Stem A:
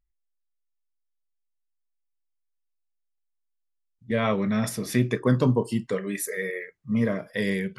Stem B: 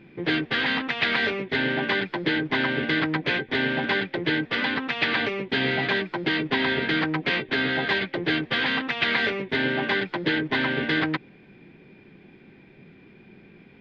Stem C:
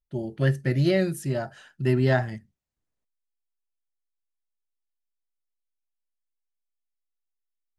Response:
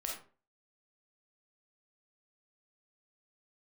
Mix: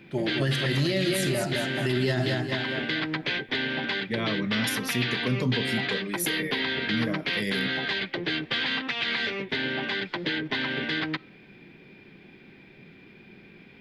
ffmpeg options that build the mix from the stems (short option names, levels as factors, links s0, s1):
-filter_complex "[0:a]equalizer=f=8300:w=1.8:g=-8,volume=0.631[s0];[1:a]acompressor=threshold=0.0447:ratio=2.5,volume=0.841,asplit=2[s1][s2];[s2]volume=0.0668[s3];[2:a]equalizer=f=1200:w=0.3:g=12.5,volume=0.531,asplit=3[s4][s5][s6];[s5]volume=0.473[s7];[s6]volume=0.668[s8];[3:a]atrim=start_sample=2205[s9];[s3][s7]amix=inputs=2:normalize=0[s10];[s10][s9]afir=irnorm=-1:irlink=0[s11];[s8]aecho=0:1:209|418|627|836|1045|1254:1|0.41|0.168|0.0689|0.0283|0.0116[s12];[s0][s1][s4][s11][s12]amix=inputs=5:normalize=0,acrossover=split=360|3000[s13][s14][s15];[s14]acompressor=threshold=0.0282:ratio=6[s16];[s13][s16][s15]amix=inputs=3:normalize=0,highshelf=f=2400:g=9.5,alimiter=limit=0.15:level=0:latency=1:release=35"